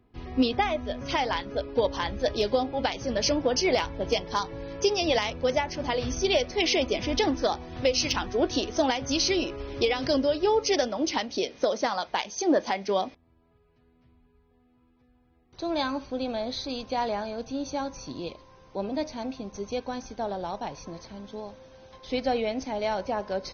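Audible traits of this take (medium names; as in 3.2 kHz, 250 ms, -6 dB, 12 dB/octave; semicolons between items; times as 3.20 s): noise floor -64 dBFS; spectral tilt -3.5 dB/octave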